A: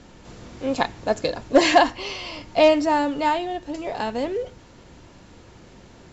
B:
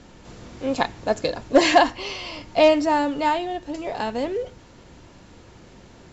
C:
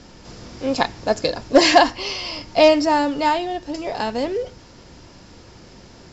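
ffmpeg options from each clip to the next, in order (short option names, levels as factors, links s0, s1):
-af anull
-af "equalizer=f=5100:t=o:w=0.34:g=10.5,volume=1.33"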